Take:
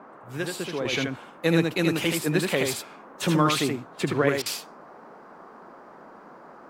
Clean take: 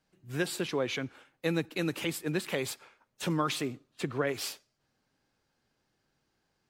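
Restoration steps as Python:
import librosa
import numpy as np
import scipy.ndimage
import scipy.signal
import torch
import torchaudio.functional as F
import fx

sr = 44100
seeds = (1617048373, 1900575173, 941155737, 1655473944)

y = fx.fix_interpolate(x, sr, at_s=(4.42,), length_ms=38.0)
y = fx.noise_reduce(y, sr, print_start_s=5.76, print_end_s=6.26, reduce_db=30.0)
y = fx.fix_echo_inverse(y, sr, delay_ms=78, level_db=-4.0)
y = fx.gain(y, sr, db=fx.steps((0.0, 0.0), (0.85, -7.0)))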